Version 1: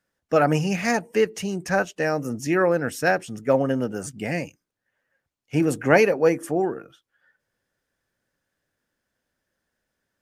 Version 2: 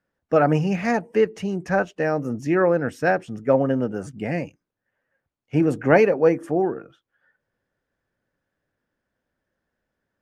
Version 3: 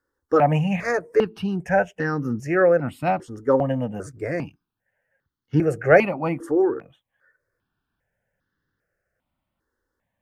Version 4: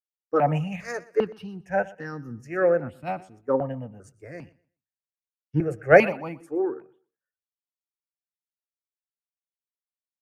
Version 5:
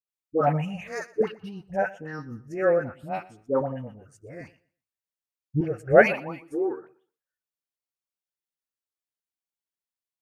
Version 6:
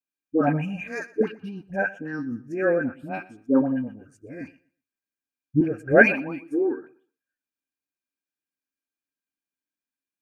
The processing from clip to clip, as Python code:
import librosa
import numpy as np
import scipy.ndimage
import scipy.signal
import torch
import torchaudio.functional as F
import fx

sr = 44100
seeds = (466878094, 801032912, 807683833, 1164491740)

y1 = fx.lowpass(x, sr, hz=1500.0, slope=6)
y1 = y1 * librosa.db_to_amplitude(2.0)
y2 = fx.phaser_held(y1, sr, hz=2.5, low_hz=670.0, high_hz=2400.0)
y2 = y2 * librosa.db_to_amplitude(3.5)
y3 = fx.echo_feedback(y2, sr, ms=122, feedback_pct=37, wet_db=-17.5)
y3 = fx.band_widen(y3, sr, depth_pct=100)
y3 = y3 * librosa.db_to_amplitude(-7.0)
y4 = fx.dispersion(y3, sr, late='highs', ms=77.0, hz=810.0)
y4 = y4 * librosa.db_to_amplitude(-1.0)
y5 = fx.small_body(y4, sr, hz=(270.0, 1600.0, 2400.0), ring_ms=45, db=17)
y5 = y5 * librosa.db_to_amplitude(-3.5)